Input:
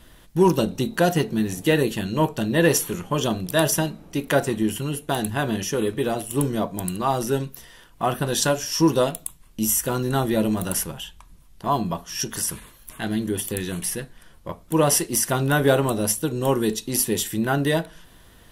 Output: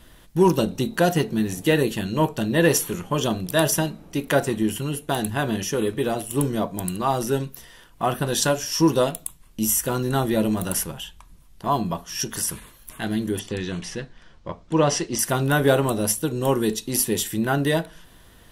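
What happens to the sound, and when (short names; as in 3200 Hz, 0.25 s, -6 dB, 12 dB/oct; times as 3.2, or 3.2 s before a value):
13.39–15.19 LPF 6300 Hz 24 dB/oct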